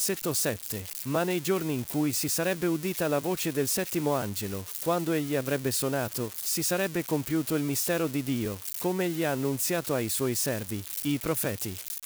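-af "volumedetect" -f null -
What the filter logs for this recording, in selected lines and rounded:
mean_volume: -29.2 dB
max_volume: -14.8 dB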